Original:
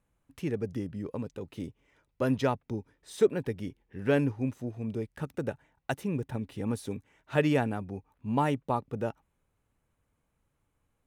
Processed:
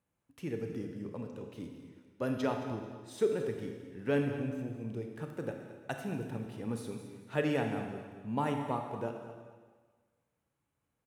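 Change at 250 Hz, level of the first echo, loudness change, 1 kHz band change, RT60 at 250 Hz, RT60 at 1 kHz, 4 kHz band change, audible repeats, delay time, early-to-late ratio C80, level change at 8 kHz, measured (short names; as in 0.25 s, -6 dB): -4.5 dB, -14.0 dB, -4.5 dB, -4.5 dB, 1.5 s, 1.5 s, -4.0 dB, 2, 0.22 s, 6.0 dB, -4.5 dB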